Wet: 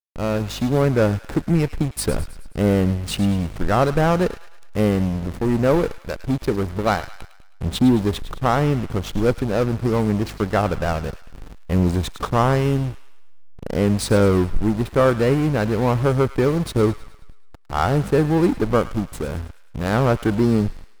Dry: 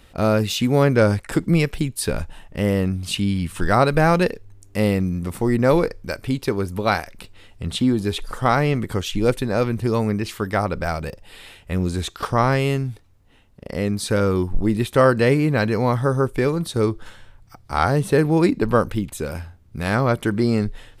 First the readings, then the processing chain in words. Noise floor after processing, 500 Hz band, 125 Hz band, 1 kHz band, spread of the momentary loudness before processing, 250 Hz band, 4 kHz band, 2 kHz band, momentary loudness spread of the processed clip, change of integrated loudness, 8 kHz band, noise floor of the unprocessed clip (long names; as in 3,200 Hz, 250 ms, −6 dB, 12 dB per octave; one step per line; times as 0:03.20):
−43 dBFS, 0.0 dB, +1.0 dB, −1.0 dB, 11 LU, +1.0 dB, −2.5 dB, −3.0 dB, 10 LU, 0.0 dB, −1.0 dB, −52 dBFS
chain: parametric band 2,700 Hz −6 dB 1.2 octaves
automatic gain control gain up to 11.5 dB
in parallel at −11.5 dB: fuzz pedal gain 40 dB, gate −32 dBFS
on the sum: mains hum 50 Hz, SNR 18 dB
slack as between gear wheels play −15 dBFS
on a send: delay with a high-pass on its return 106 ms, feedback 51%, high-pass 1,400 Hz, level −12 dB
on the sum: level −5 dB